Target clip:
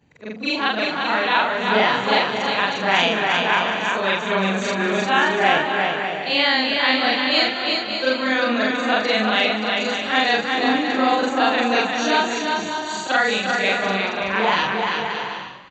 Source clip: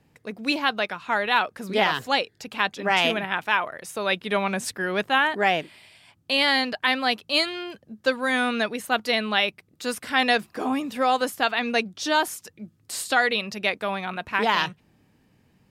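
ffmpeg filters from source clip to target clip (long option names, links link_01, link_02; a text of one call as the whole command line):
ffmpeg -i in.wav -filter_complex "[0:a]afftfilt=real='re':imag='-im':win_size=4096:overlap=0.75,asplit=2[link_01][link_02];[link_02]aecho=0:1:350|577.5|725.4|821.5|884:0.631|0.398|0.251|0.158|0.1[link_03];[link_01][link_03]amix=inputs=2:normalize=0,aresample=16000,aresample=44100,asuperstop=centerf=5200:order=8:qfactor=7,asplit=2[link_04][link_05];[link_05]asplit=4[link_06][link_07][link_08][link_09];[link_06]adelay=191,afreqshift=47,volume=-14dB[link_10];[link_07]adelay=382,afreqshift=94,volume=-20.7dB[link_11];[link_08]adelay=573,afreqshift=141,volume=-27.5dB[link_12];[link_09]adelay=764,afreqshift=188,volume=-34.2dB[link_13];[link_10][link_11][link_12][link_13]amix=inputs=4:normalize=0[link_14];[link_04][link_14]amix=inputs=2:normalize=0,volume=7dB" out.wav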